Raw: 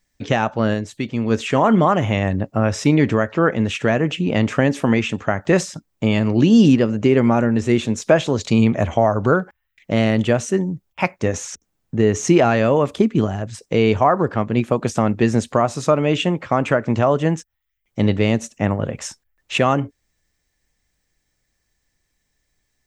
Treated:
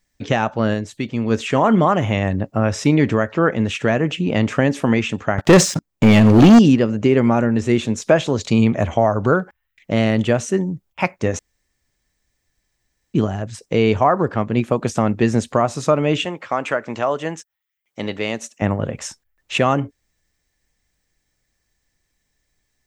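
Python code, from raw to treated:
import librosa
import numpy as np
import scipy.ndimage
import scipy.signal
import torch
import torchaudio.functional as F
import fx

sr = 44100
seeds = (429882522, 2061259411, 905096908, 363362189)

y = fx.leveller(x, sr, passes=3, at=(5.38, 6.59))
y = fx.highpass(y, sr, hz=650.0, slope=6, at=(16.25, 18.62))
y = fx.edit(y, sr, fx.room_tone_fill(start_s=11.39, length_s=1.75), tone=tone)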